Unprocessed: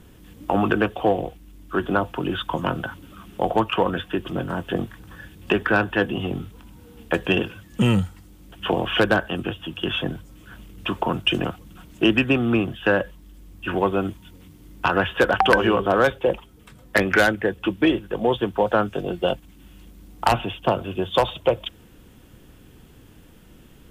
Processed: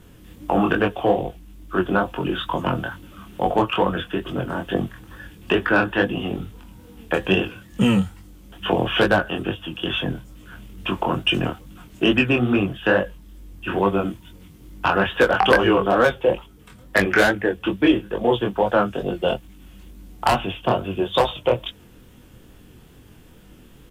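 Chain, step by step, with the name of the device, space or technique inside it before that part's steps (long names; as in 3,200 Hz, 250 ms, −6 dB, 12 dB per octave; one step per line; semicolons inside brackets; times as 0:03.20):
double-tracked vocal (double-tracking delay 16 ms −13.5 dB; chorus effect 2.3 Hz, delay 20 ms, depth 5.6 ms)
level +4 dB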